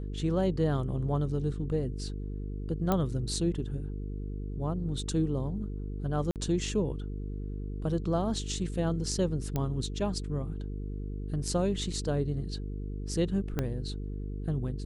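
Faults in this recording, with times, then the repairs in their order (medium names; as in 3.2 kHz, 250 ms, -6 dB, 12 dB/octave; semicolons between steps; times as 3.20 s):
buzz 50 Hz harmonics 9 -36 dBFS
2.92 s: pop -14 dBFS
6.31–6.36 s: dropout 48 ms
9.56 s: pop -17 dBFS
13.59 s: pop -16 dBFS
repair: de-click; de-hum 50 Hz, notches 9; interpolate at 6.31 s, 48 ms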